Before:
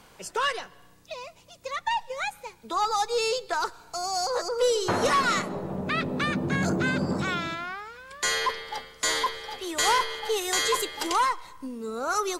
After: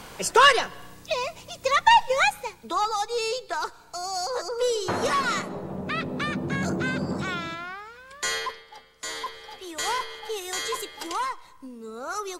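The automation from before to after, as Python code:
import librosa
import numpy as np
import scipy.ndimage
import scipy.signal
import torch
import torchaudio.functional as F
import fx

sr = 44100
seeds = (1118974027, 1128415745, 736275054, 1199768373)

y = fx.gain(x, sr, db=fx.line((2.17, 11.0), (2.96, -1.5), (8.36, -1.5), (8.68, -12.0), (9.43, -5.0)))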